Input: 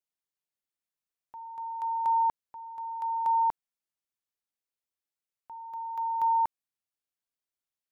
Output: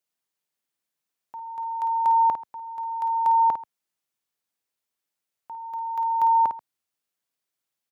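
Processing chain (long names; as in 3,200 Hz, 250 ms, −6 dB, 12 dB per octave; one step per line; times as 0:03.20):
high-pass filter 98 Hz 12 dB per octave
multi-tap delay 53/135 ms −8.5/−20 dB
level +6.5 dB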